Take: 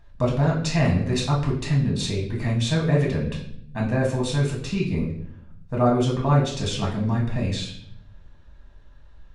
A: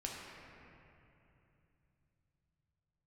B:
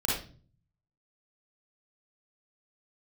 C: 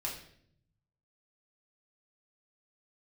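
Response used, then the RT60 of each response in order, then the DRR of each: C; 2.9, 0.40, 0.65 seconds; −3.5, −6.5, −3.5 decibels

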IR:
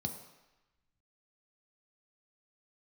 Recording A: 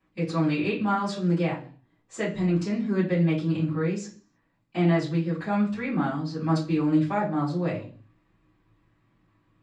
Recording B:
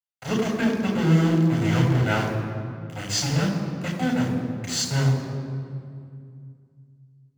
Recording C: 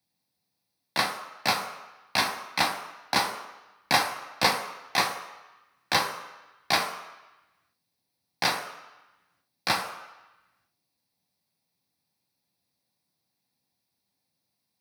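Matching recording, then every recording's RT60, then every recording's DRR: C; 0.45, 2.3, 1.0 seconds; −16.5, −0.5, 4.0 decibels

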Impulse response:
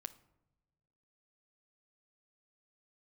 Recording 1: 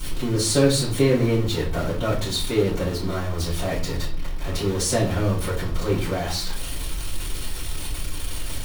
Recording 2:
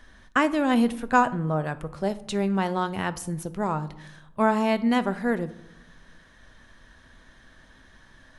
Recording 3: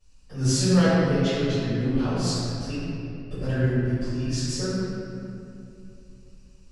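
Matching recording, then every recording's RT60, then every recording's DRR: 2; 0.45 s, non-exponential decay, 2.8 s; −10.0, 12.0, −18.5 decibels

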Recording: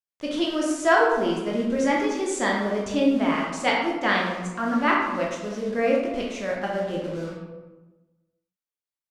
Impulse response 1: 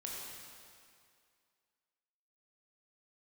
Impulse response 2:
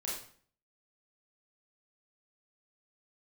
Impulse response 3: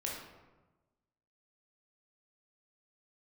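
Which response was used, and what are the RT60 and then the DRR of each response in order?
3; 2.3, 0.50, 1.2 seconds; −4.0, −6.0, −3.0 decibels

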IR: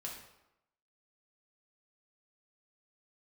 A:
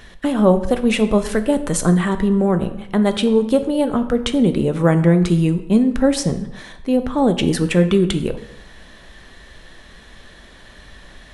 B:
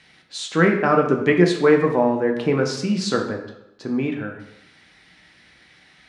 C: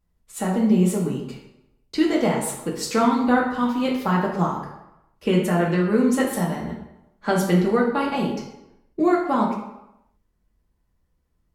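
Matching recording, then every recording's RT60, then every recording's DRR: C; 0.90, 0.90, 0.90 seconds; 8.0, 1.5, −2.5 decibels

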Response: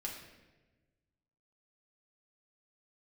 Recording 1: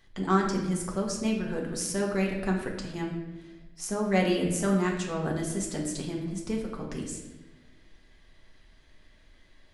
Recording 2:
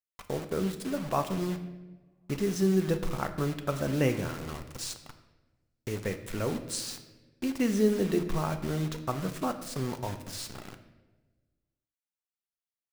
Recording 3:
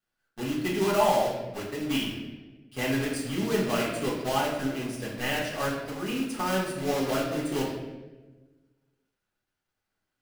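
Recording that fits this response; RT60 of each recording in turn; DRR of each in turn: 1; 1.2, 1.2, 1.2 seconds; −2.0, 6.0, −7.0 decibels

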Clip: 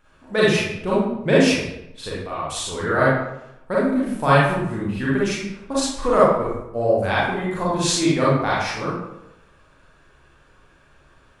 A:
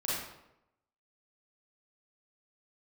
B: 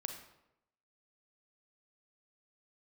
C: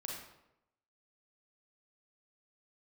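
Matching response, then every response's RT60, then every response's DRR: A; 0.85, 0.85, 0.85 seconds; −8.0, 4.5, −2.0 decibels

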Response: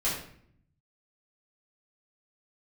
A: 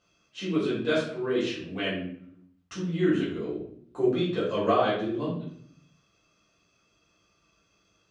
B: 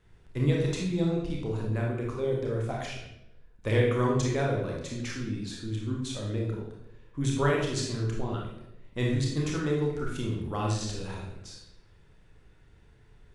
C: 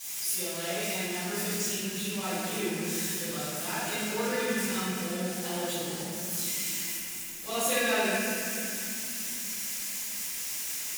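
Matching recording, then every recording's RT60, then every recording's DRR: A; 0.60, 0.85, 3.0 seconds; −9.5, −2.0, −18.5 decibels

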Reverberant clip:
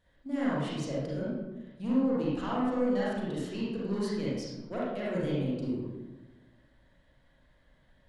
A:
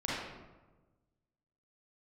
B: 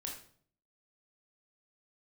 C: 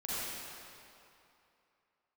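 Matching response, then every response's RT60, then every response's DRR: A; 1.2, 0.55, 2.8 seconds; −8.0, −1.0, −10.0 decibels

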